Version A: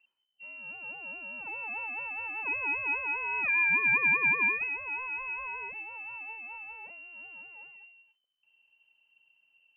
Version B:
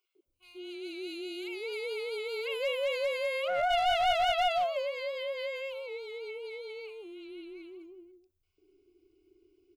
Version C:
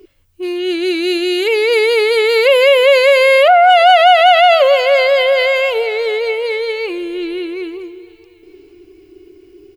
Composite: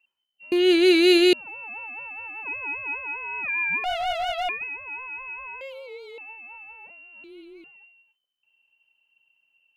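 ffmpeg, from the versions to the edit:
-filter_complex "[1:a]asplit=3[a][b][c];[0:a]asplit=5[d][e][f][g][h];[d]atrim=end=0.522[i];[2:a]atrim=start=0.518:end=1.332[j];[e]atrim=start=1.328:end=3.842[k];[a]atrim=start=3.838:end=4.492[l];[f]atrim=start=4.488:end=5.612[m];[b]atrim=start=5.608:end=6.182[n];[g]atrim=start=6.178:end=7.242[o];[c]atrim=start=7.238:end=7.642[p];[h]atrim=start=7.638[q];[i][j]acrossfade=d=0.004:c1=hsin:c2=hsin[r];[r][k]acrossfade=d=0.004:c1=hsin:c2=hsin[s];[s][l]acrossfade=d=0.004:c1=hsin:c2=hsin[t];[t][m]acrossfade=d=0.004:c1=hsin:c2=hsin[u];[u][n]acrossfade=d=0.004:c1=hsin:c2=hsin[v];[v][o]acrossfade=d=0.004:c1=hsin:c2=hsin[w];[w][p]acrossfade=d=0.004:c1=hsin:c2=hsin[x];[x][q]acrossfade=d=0.004:c1=hsin:c2=hsin"

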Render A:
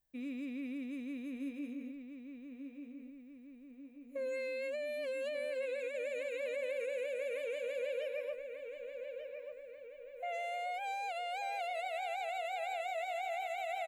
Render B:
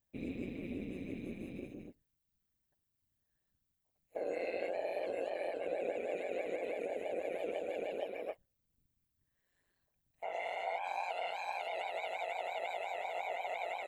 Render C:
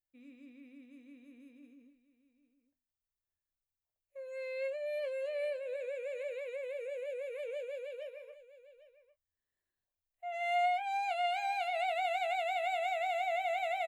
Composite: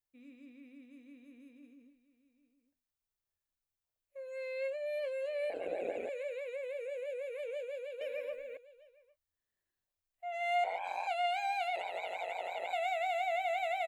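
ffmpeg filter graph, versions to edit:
-filter_complex "[1:a]asplit=3[a][b][c];[2:a]asplit=5[d][e][f][g][h];[d]atrim=end=5.502[i];[a]atrim=start=5.498:end=6.092[j];[e]atrim=start=6.088:end=8.012[k];[0:a]atrim=start=8.008:end=8.572[l];[f]atrim=start=8.568:end=10.642[m];[b]atrim=start=10.638:end=11.072[n];[g]atrim=start=11.068:end=11.762[o];[c]atrim=start=11.758:end=12.732[p];[h]atrim=start=12.728[q];[i][j]acrossfade=d=0.004:c1=hsin:c2=hsin[r];[r][k]acrossfade=d=0.004:c1=hsin:c2=hsin[s];[s][l]acrossfade=d=0.004:c1=hsin:c2=hsin[t];[t][m]acrossfade=d=0.004:c1=hsin:c2=hsin[u];[u][n]acrossfade=d=0.004:c1=hsin:c2=hsin[v];[v][o]acrossfade=d=0.004:c1=hsin:c2=hsin[w];[w][p]acrossfade=d=0.004:c1=hsin:c2=hsin[x];[x][q]acrossfade=d=0.004:c1=hsin:c2=hsin"

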